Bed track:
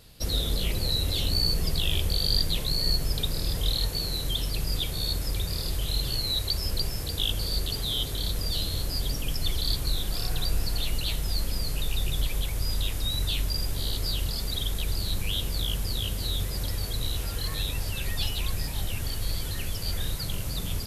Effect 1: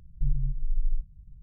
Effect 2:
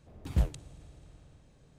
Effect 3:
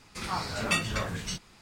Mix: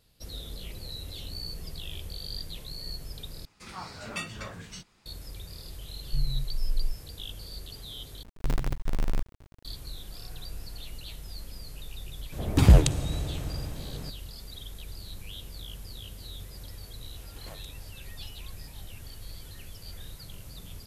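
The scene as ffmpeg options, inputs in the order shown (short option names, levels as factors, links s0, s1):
-filter_complex "[1:a]asplit=2[s0][s1];[2:a]asplit=2[s2][s3];[0:a]volume=0.224[s4];[s1]acrusher=bits=5:dc=4:mix=0:aa=0.000001[s5];[s2]alimiter=level_in=20:limit=0.891:release=50:level=0:latency=1[s6];[s3]highpass=470[s7];[s4]asplit=3[s8][s9][s10];[s8]atrim=end=3.454[s11];[3:a]atrim=end=1.61,asetpts=PTS-STARTPTS,volume=0.376[s12];[s9]atrim=start=5.056:end=8.234[s13];[s5]atrim=end=1.42,asetpts=PTS-STARTPTS,volume=0.75[s14];[s10]atrim=start=9.646[s15];[s0]atrim=end=1.42,asetpts=PTS-STARTPTS,volume=0.794,afade=t=in:d=0.004:c=hsin,afade=t=out:st=1.416:d=0.004:c=hsin,adelay=5920[s16];[s6]atrim=end=1.78,asetpts=PTS-STARTPTS,volume=0.531,afade=t=in:d=0.004:c=hsin,afade=t=out:st=1.776:d=0.004:c=hsin,adelay=12320[s17];[s7]atrim=end=1.78,asetpts=PTS-STARTPTS,volume=0.596,afade=t=in:d=0.004:c=hsin,afade=t=out:st=1.776:d=0.004:c=hsin,adelay=17100[s18];[s11][s12]acrossfade=d=0.004:c1=hsin:c2=hsin[s19];[s19][s13]acrossfade=d=0.004:c1=hsin:c2=hsin[s20];[s20][s14]acrossfade=d=0.004:c1=hsin:c2=hsin[s21];[s21][s15]acrossfade=d=0.004:c1=hsin:c2=hsin[s22];[s22][s16][s17][s18]amix=inputs=4:normalize=0"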